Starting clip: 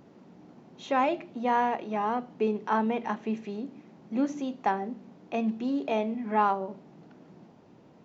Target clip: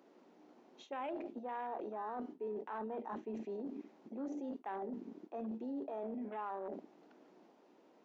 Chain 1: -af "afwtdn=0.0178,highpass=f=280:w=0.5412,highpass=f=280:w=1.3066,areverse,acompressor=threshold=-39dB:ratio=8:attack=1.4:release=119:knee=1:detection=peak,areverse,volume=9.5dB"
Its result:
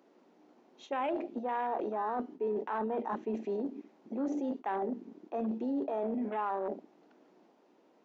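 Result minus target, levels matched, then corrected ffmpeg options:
compressor: peak gain reduction -8.5 dB
-af "afwtdn=0.0178,highpass=f=280:w=0.5412,highpass=f=280:w=1.3066,areverse,acompressor=threshold=-48.5dB:ratio=8:attack=1.4:release=119:knee=1:detection=peak,areverse,volume=9.5dB"

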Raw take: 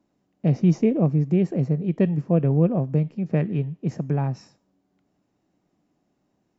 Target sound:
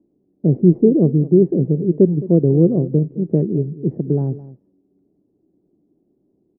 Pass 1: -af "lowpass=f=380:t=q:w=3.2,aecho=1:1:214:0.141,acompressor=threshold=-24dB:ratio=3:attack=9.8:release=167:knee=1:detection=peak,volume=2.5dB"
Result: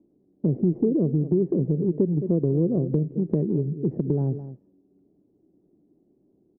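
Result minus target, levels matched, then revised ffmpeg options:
compressor: peak gain reduction +12 dB
-af "lowpass=f=380:t=q:w=3.2,aecho=1:1:214:0.141,volume=2.5dB"

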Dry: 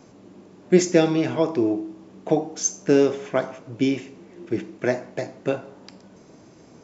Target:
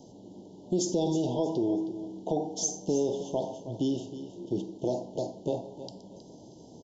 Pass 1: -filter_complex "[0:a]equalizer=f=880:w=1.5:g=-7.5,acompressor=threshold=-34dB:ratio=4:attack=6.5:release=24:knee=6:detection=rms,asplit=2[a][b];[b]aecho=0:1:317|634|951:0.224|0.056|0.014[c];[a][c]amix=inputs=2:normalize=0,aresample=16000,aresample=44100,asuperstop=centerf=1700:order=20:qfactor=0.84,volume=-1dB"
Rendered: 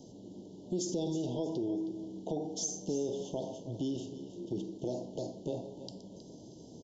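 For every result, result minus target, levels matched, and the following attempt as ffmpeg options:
compressor: peak gain reduction +6 dB; 1000 Hz band -3.5 dB
-filter_complex "[0:a]equalizer=f=880:w=1.5:g=-7.5,acompressor=threshold=-25.5dB:ratio=4:attack=6.5:release=24:knee=6:detection=rms,asplit=2[a][b];[b]aecho=0:1:317|634|951:0.224|0.056|0.014[c];[a][c]amix=inputs=2:normalize=0,aresample=16000,aresample=44100,asuperstop=centerf=1700:order=20:qfactor=0.84,volume=-1dB"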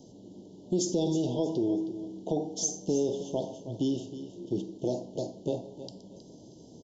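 1000 Hz band -4.5 dB
-filter_complex "[0:a]acompressor=threshold=-25.5dB:ratio=4:attack=6.5:release=24:knee=6:detection=rms,asplit=2[a][b];[b]aecho=0:1:317|634|951:0.224|0.056|0.014[c];[a][c]amix=inputs=2:normalize=0,aresample=16000,aresample=44100,asuperstop=centerf=1700:order=20:qfactor=0.84,volume=-1dB"

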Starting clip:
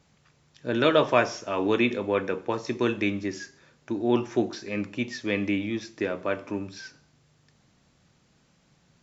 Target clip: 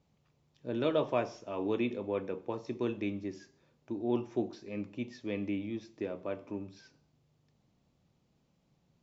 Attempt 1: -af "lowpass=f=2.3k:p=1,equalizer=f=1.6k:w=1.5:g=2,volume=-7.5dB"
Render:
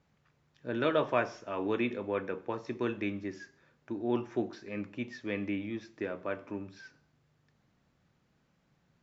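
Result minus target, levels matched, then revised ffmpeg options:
2000 Hz band +6.0 dB
-af "lowpass=f=2.3k:p=1,equalizer=f=1.6k:w=1.5:g=-9.5,volume=-7.5dB"

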